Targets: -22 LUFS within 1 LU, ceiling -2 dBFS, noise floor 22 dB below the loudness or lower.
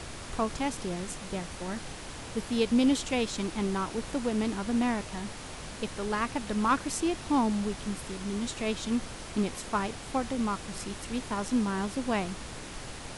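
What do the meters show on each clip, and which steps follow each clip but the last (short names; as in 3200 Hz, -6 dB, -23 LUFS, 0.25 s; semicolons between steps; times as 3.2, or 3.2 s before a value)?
noise floor -42 dBFS; noise floor target -54 dBFS; loudness -31.5 LUFS; peak -13.5 dBFS; loudness target -22.0 LUFS
-> noise print and reduce 12 dB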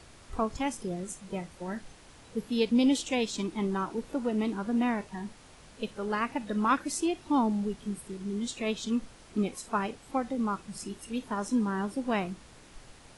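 noise floor -54 dBFS; loudness -31.5 LUFS; peak -14.0 dBFS; loudness target -22.0 LUFS
-> gain +9.5 dB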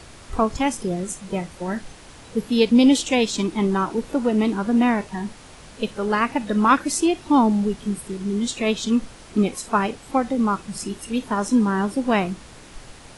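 loudness -22.0 LUFS; peak -4.5 dBFS; noise floor -44 dBFS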